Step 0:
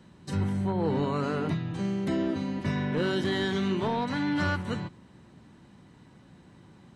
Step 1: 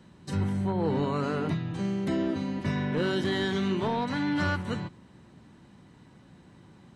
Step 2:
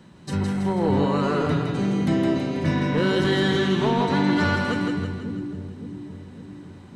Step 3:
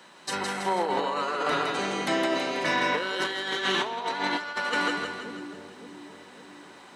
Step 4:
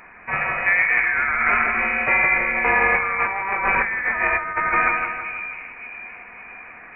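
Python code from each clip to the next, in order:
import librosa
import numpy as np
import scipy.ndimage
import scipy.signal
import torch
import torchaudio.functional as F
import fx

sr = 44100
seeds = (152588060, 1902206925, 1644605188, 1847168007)

y1 = x
y2 = fx.hum_notches(y1, sr, base_hz=50, count=2)
y2 = fx.echo_split(y2, sr, split_hz=390.0, low_ms=560, high_ms=163, feedback_pct=52, wet_db=-3.5)
y2 = F.gain(torch.from_numpy(y2), 5.0).numpy()
y3 = scipy.signal.sosfilt(scipy.signal.butter(2, 690.0, 'highpass', fs=sr, output='sos'), y2)
y3 = fx.over_compress(y3, sr, threshold_db=-31.0, ratio=-0.5)
y3 = F.gain(torch.from_numpy(y3), 4.5).numpy()
y4 = fx.freq_invert(y3, sr, carrier_hz=2700)
y4 = F.gain(torch.from_numpy(y4), 8.0).numpy()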